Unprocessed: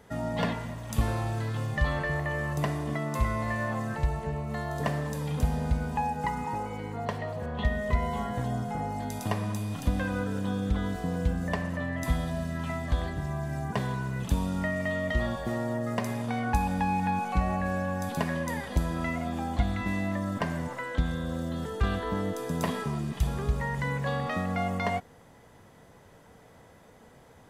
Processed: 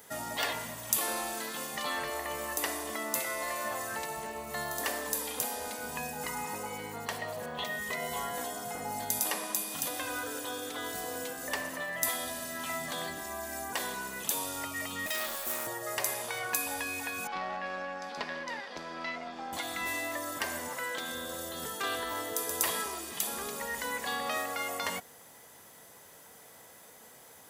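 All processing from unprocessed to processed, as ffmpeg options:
ffmpeg -i in.wav -filter_complex "[0:a]asettb=1/sr,asplit=3[link_01][link_02][link_03];[link_01]atrim=end=15.064[link_04];[link_02]atrim=start=15.06:end=15.67,asetpts=PTS-STARTPTS,afade=type=in:duration=0.004:curve=qsin,afade=type=out:start_time=0.606:duration=0.004:curve=qsin,highpass=340,highshelf=frequency=7100:gain=11,aeval=exprs='max(val(0),0)':channel_layout=same[link_05];[link_03]atrim=start=15.666[link_06];[link_04][link_05]acrossfade=duration=0.004:curve1=hsin:curve2=qsin[link_07];[link_07][link_06]acrossfade=duration=0.004:curve1=qsin:curve2=hsin,asettb=1/sr,asplit=3[link_08][link_09][link_10];[link_08]atrim=end=17.274[link_11];[link_09]atrim=start=17.27:end=19.53,asetpts=PTS-STARTPTS,afade=type=in:duration=0.004:curve=qsin,afade=type=out:start_time=2.256:duration=0.004:curve=qsin,acrossover=split=220 2500:gain=0.0891 1 0.158[link_12][link_13][link_14];[link_12][link_13][link_14]amix=inputs=3:normalize=0,aeval=exprs='(tanh(15.8*val(0)+0.7)-tanh(0.7))/15.8':channel_layout=same,lowpass=frequency=5000:width_type=q:width=3.6[link_15];[link_10]atrim=start=19.526[link_16];[link_11][link_15]acrossfade=duration=0.004:curve1=hsin:curve2=qsin[link_17];[link_17][link_16]acrossfade=duration=0.004:curve1=qsin:curve2=hsin,afftfilt=real='re*lt(hypot(re,im),0.158)':imag='im*lt(hypot(re,im),0.158)':win_size=1024:overlap=0.75,aemphasis=mode=production:type=riaa" out.wav

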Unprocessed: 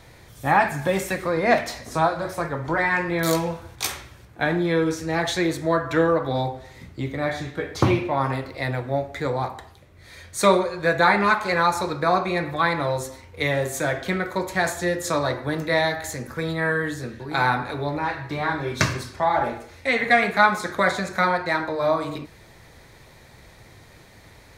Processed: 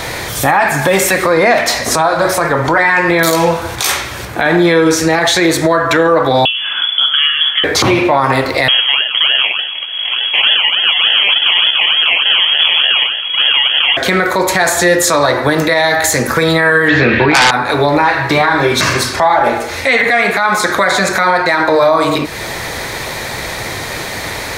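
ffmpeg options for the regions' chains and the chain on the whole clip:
ffmpeg -i in.wav -filter_complex "[0:a]asettb=1/sr,asplit=3[link_01][link_02][link_03];[link_01]atrim=end=6.454[link_04];[link_02]atrim=start=6.45:end=7.64,asetpts=PTS-STARTPTS,afade=type=in:duration=0.004:curve=qsin,afade=type=out:start_time=1.186:duration=0.004:curve=qsin,acrossover=split=900|2200[link_05][link_06][link_07];[link_05]acompressor=threshold=-33dB:ratio=4[link_08];[link_06]acompressor=threshold=-47dB:ratio=4[link_09];[link_07]acompressor=threshold=-53dB:ratio=4[link_10];[link_08][link_09][link_10]amix=inputs=3:normalize=0,lowpass=frequency=3000:width_type=q:width=0.5098,lowpass=frequency=3000:width_type=q:width=0.6013,lowpass=frequency=3000:width_type=q:width=0.9,lowpass=frequency=3000:width_type=q:width=2.563,afreqshift=-3500[link_11];[link_03]atrim=start=7.636[link_12];[link_04][link_11]acrossfade=duration=0.004:curve1=hsin:curve2=qsin[link_13];[link_13][link_12]acrossfade=duration=0.004:curve1=qsin:curve2=hsin,asettb=1/sr,asplit=3[link_14][link_15][link_16];[link_14]atrim=end=8.684[link_17];[link_15]atrim=start=8.68:end=13.97,asetpts=PTS-STARTPTS,afade=type=in:duration=0.004:curve=qsin,afade=type=out:start_time=5.286:duration=0.004:curve=qsin,acrusher=samples=31:mix=1:aa=0.000001:lfo=1:lforange=18.6:lforate=3.4,lowpass=frequency=2900:width_type=q:width=0.5098,lowpass=frequency=2900:width_type=q:width=0.6013,lowpass=frequency=2900:width_type=q:width=0.9,lowpass=frequency=2900:width_type=q:width=2.563,afreqshift=-3400[link_18];[link_16]atrim=start=13.966[link_19];[link_17][link_18]acrossfade=duration=0.004:curve1=hsin:curve2=qsin[link_20];[link_20][link_19]acrossfade=duration=0.004:curve1=qsin:curve2=hsin,asettb=1/sr,asplit=3[link_21][link_22][link_23];[link_21]atrim=end=16.884[link_24];[link_22]atrim=start=16.88:end=17.51,asetpts=PTS-STARTPTS,afade=type=in:duration=0.004:curve=qsin,afade=type=out:start_time=0.626:duration=0.004:curve=qsin,lowpass=frequency=3400:width=0.5412,lowpass=frequency=3400:width=1.3066,equalizer=frequency=2400:width=2.1:gain=10.5,aeval=exprs='0.447*sin(PI/2*3.55*val(0)/0.447)':channel_layout=same[link_25];[link_23]atrim=start=17.506[link_26];[link_24][link_25]acrossfade=duration=0.004:curve1=hsin:curve2=qsin[link_27];[link_27][link_26]acrossfade=duration=0.004:curve1=qsin:curve2=hsin,lowshelf=frequency=250:gain=-12,acompressor=threshold=-44dB:ratio=2,alimiter=level_in=31dB:limit=-1dB:release=50:level=0:latency=1,volume=-1dB" out.wav

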